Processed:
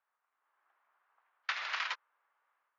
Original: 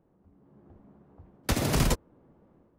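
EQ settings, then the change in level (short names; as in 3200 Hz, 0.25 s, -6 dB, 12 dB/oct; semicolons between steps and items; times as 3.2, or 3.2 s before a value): HPF 1300 Hz 24 dB/oct; brick-wall FIR low-pass 7200 Hz; air absorption 340 m; +4.5 dB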